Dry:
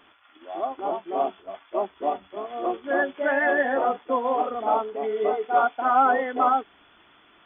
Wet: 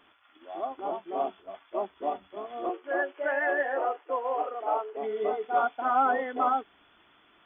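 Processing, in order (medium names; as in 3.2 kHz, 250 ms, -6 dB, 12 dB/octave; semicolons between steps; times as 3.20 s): 2.69–4.97 s: Chebyshev band-pass 320–3000 Hz, order 4; trim -5 dB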